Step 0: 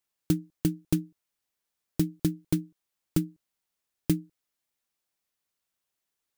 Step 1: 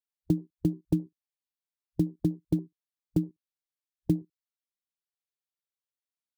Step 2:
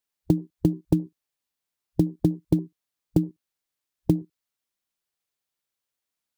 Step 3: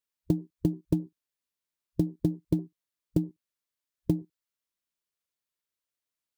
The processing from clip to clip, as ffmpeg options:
-af "highpass=49,afwtdn=0.0141,equalizer=f=4k:t=o:w=0.77:g=4"
-af "acompressor=threshold=-24dB:ratio=6,volume=8.5dB"
-af "asuperstop=centerf=780:order=20:qfactor=6.7,volume=-5dB"

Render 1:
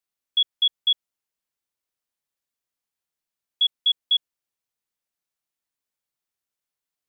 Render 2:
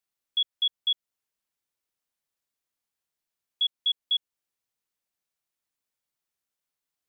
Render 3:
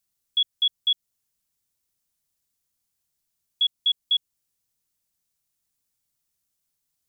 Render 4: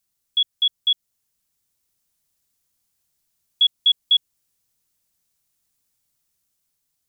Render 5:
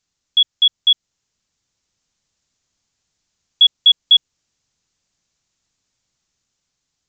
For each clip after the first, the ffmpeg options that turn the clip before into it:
-af "alimiter=limit=-19.5dB:level=0:latency=1:release=228"
-af "bass=f=250:g=12,treble=f=4k:g=10"
-af "dynaudnorm=f=640:g=5:m=3dB,volume=2.5dB"
-af "aresample=16000,aresample=44100,volume=6dB"

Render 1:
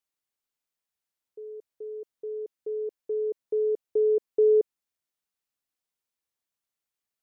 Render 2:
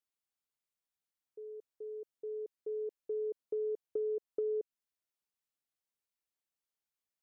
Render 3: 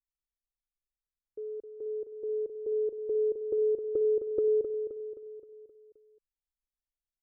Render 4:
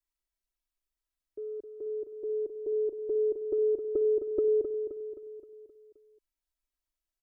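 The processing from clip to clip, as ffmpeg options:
-af "acompressor=threshold=-27dB:ratio=6,volume=-6dB"
-af "aemphasis=mode=reproduction:type=bsi,anlmdn=0.00398,aecho=1:1:262|524|786|1048|1310|1572:0.398|0.207|0.108|0.056|0.0291|0.0151,volume=6dB"
-af "aecho=1:1:3.1:0.98"

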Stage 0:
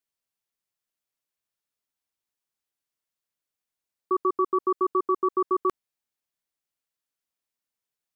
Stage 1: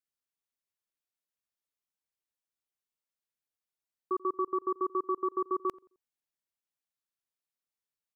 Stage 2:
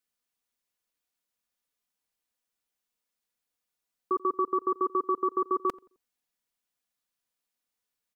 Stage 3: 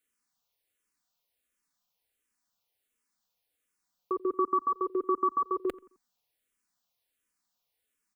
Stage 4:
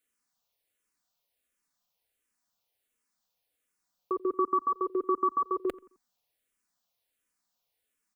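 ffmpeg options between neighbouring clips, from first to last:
-filter_complex "[0:a]asplit=2[a][b];[b]adelay=87,lowpass=f=900:p=1,volume=-21dB,asplit=2[c][d];[d]adelay=87,lowpass=f=900:p=1,volume=0.37,asplit=2[e][f];[f]adelay=87,lowpass=f=900:p=1,volume=0.37[g];[a][c][e][g]amix=inputs=4:normalize=0,volume=-7dB"
-af "aecho=1:1:4.1:0.37,volume=6dB"
-filter_complex "[0:a]asplit=2[a][b];[b]acompressor=threshold=-36dB:ratio=6,volume=1dB[c];[a][c]amix=inputs=2:normalize=0,asplit=2[d][e];[e]afreqshift=-1.4[f];[d][f]amix=inputs=2:normalize=1"
-af "equalizer=f=620:t=o:w=0.44:g=3.5"

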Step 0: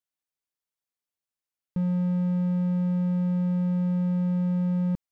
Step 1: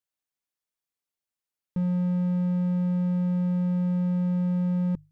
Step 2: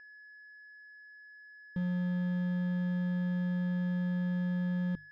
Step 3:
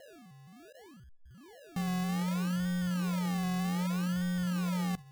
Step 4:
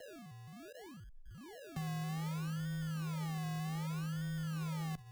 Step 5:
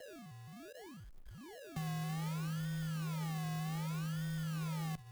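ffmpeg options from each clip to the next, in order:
-af "bandreject=f=50:t=h:w=6,bandreject=f=100:t=h:w=6,bandreject=f=150:t=h:w=6"
-af "crystalizer=i=3:c=0,aeval=exprs='val(0)+0.0126*sin(2*PI*1700*n/s)':c=same,adynamicsmooth=sensitivity=4:basefreq=890,volume=-7dB"
-af "acrusher=samples=37:mix=1:aa=0.000001:lfo=1:lforange=22.2:lforate=0.64"
-af "acompressor=threshold=-38dB:ratio=12,asoftclip=type=hard:threshold=-37.5dB,afreqshift=-20,volume=2dB"
-af "acrusher=bits=4:mode=log:mix=0:aa=0.000001"

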